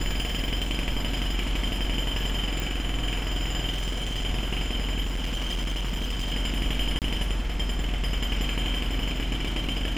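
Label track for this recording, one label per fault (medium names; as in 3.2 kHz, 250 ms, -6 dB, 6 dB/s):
2.600000	2.600000	pop
3.690000	4.260000	clipped -24.5 dBFS
5.010000	6.330000	clipped -24.5 dBFS
6.990000	7.020000	dropout 28 ms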